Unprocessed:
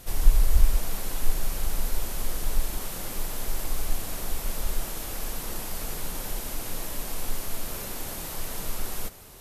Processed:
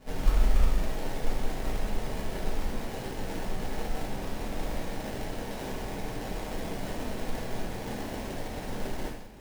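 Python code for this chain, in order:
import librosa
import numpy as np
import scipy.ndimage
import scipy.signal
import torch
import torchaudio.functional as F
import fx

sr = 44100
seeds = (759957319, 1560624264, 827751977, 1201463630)

y = fx.dynamic_eq(x, sr, hz=9100.0, q=0.72, threshold_db=-52.0, ratio=4.0, max_db=6)
y = fx.sample_hold(y, sr, seeds[0], rate_hz=1300.0, jitter_pct=20)
y = fx.rev_gated(y, sr, seeds[1], gate_ms=220, shape='falling', drr_db=-3.0)
y = y * 10.0 ** (-7.5 / 20.0)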